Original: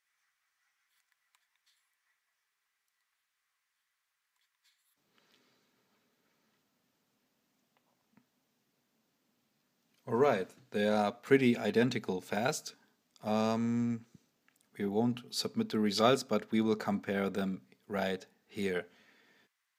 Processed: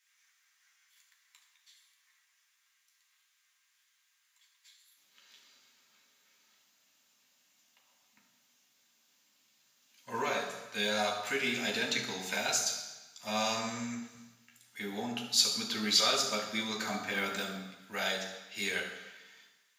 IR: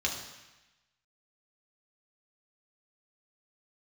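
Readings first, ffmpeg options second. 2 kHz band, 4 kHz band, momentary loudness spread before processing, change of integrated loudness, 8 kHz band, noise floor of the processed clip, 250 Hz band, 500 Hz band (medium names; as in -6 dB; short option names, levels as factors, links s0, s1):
+5.0 dB, +10.0 dB, 11 LU, 0.0 dB, +12.0 dB, -74 dBFS, -8.0 dB, -6.5 dB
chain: -filter_complex "[0:a]acrossover=split=6400[s0][s1];[s1]acontrast=50[s2];[s0][s2]amix=inputs=2:normalize=0,alimiter=limit=0.106:level=0:latency=1:release=248,aeval=exprs='0.106*(cos(1*acos(clip(val(0)/0.106,-1,1)))-cos(1*PI/2))+0.00133*(cos(5*acos(clip(val(0)/0.106,-1,1)))-cos(5*PI/2))':c=same,tiltshelf=f=670:g=-9.5[s3];[1:a]atrim=start_sample=2205[s4];[s3][s4]afir=irnorm=-1:irlink=0,volume=0.447"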